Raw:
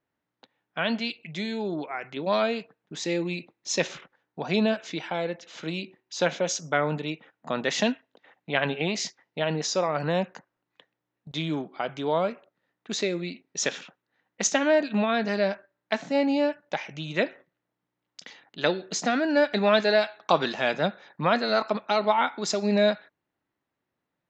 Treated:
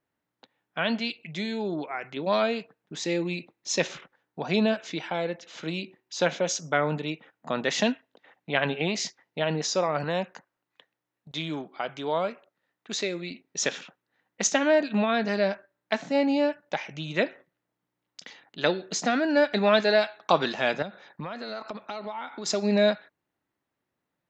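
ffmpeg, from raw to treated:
ffmpeg -i in.wav -filter_complex "[0:a]asettb=1/sr,asplit=3[link_01][link_02][link_03];[link_01]atrim=end=10.044[link_04];[link_02]atrim=start=10.04:end=13.31,asetpts=PTS-STARTPTS,afade=type=in:duration=0.004:curve=qsin,afade=type=out:start_time=3.266:duration=0.004:curve=qsin,lowshelf=frequency=480:gain=-5.5[link_05];[link_03]atrim=start=13.306[link_06];[link_04][link_05]acrossfade=duration=0.004:curve1=hsin:curve2=qsin[link_07];[link_07][link_06]acrossfade=duration=0.004:curve1=qsin:curve2=hsin,asettb=1/sr,asplit=3[link_08][link_09][link_10];[link_08]atrim=end=20.824[link_11];[link_09]atrim=start=20.82:end=22.46,asetpts=PTS-STARTPTS,afade=type=in:duration=0.004:curve=qsin,afade=type=out:start_time=1.636:duration=0.004:curve=qsin,acompressor=threshold=-32dB:ratio=6:attack=3.2:release=140:knee=1:detection=peak[link_12];[link_10]atrim=start=22.456[link_13];[link_11][link_12]acrossfade=duration=0.004:curve1=hsin:curve2=qsin[link_14];[link_14][link_13]acrossfade=duration=0.004:curve1=qsin:curve2=hsin" out.wav

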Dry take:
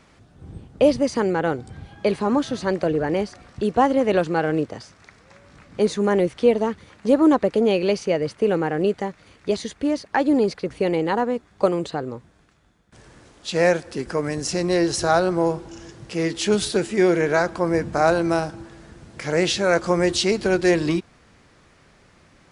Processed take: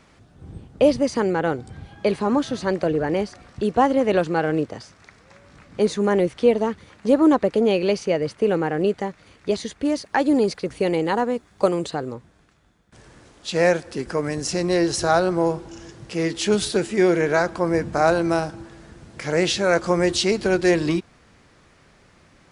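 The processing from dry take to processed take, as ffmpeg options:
ffmpeg -i in.wav -filter_complex "[0:a]asettb=1/sr,asplit=3[link_01][link_02][link_03];[link_01]atrim=end=9.854[link_04];[link_02]atrim=start=9.85:end=12.14,asetpts=PTS-STARTPTS,afade=type=in:duration=0.004:curve=qsin,afade=type=out:start_time=2.286:duration=0.004:curve=qsin,highshelf=frequency=6500:gain=9[link_05];[link_03]atrim=start=12.136[link_06];[link_04][link_05]acrossfade=duration=0.004:curve1=hsin:curve2=qsin[link_07];[link_07][link_06]acrossfade=duration=0.004:curve1=qsin:curve2=hsin" out.wav

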